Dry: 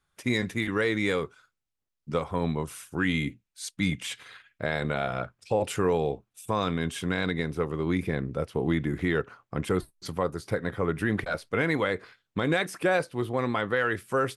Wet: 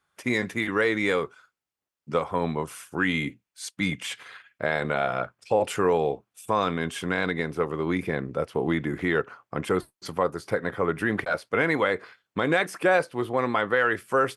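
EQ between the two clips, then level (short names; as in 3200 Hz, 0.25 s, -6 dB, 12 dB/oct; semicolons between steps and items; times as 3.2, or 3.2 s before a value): HPF 150 Hz 6 dB/oct; bell 970 Hz +5 dB 2.9 oct; notch 3800 Hz, Q 23; 0.0 dB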